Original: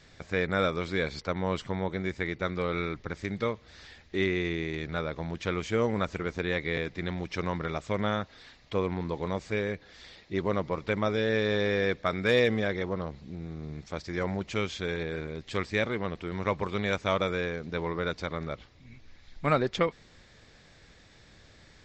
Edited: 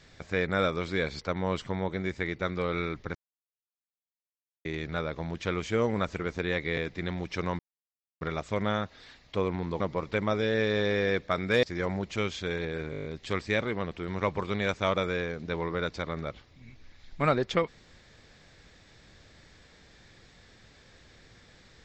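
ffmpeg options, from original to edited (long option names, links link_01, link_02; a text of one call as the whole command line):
ffmpeg -i in.wav -filter_complex "[0:a]asplit=13[link_01][link_02][link_03][link_04][link_05][link_06][link_07][link_08][link_09][link_10][link_11][link_12][link_13];[link_01]atrim=end=3.15,asetpts=PTS-STARTPTS,afade=type=out:start_time=3.146:duration=0.004:curve=hsin[link_14];[link_02]atrim=start=3.15:end=4.65,asetpts=PTS-STARTPTS,volume=0[link_15];[link_03]atrim=start=4.65:end=7.59,asetpts=PTS-STARTPTS,afade=type=in:duration=0.004:curve=hsin,afade=type=out:start_time=2.936:duration=0.004:curve=hsin,apad=pad_dur=0.62[link_16];[link_04]atrim=start=7.59:end=9.182,asetpts=PTS-STARTPTS,afade=type=in:duration=0.004:curve=hsin[link_17];[link_05]atrim=start=10.548:end=12.382[link_18];[link_06]atrim=start=14.008:end=15.312[link_19];[link_07]atrim=start=15.288:end=15.312[link_20];[link_08]atrim=start=15.288:end=15.312[link_21];[link_09]atrim=start=15.288:end=15.312[link_22];[link_10]atrim=start=15.288:end=15.312[link_23];[link_11]atrim=start=15.288:end=15.312[link_24];[link_12]atrim=start=15.288:end=15.312[link_25];[link_13]atrim=start=15.288[link_26];[link_14][link_15][link_16][link_17]concat=n=4:v=0:a=1[link_27];[link_27][link_18]acrossfade=duration=0.004:curve1=hsin:curve2=hsin[link_28];[link_28][link_19]acrossfade=duration=0.004:curve1=hsin:curve2=hsin[link_29];[link_29][link_20]acrossfade=duration=0.004:curve1=hsin:curve2=hsin[link_30];[link_30][link_21]acrossfade=duration=0.004:curve1=hsin:curve2=hsin[link_31];[link_31][link_22]acrossfade=duration=0.004:curve1=hsin:curve2=hsin[link_32];[link_32][link_23]acrossfade=duration=0.004:curve1=hsin:curve2=hsin[link_33];[link_33][link_24]acrossfade=duration=0.004:curve1=hsin:curve2=hsin[link_34];[link_34][link_25]acrossfade=duration=0.004:curve1=hsin:curve2=hsin[link_35];[link_35][link_26]acrossfade=duration=0.004:curve1=hsin:curve2=hsin" out.wav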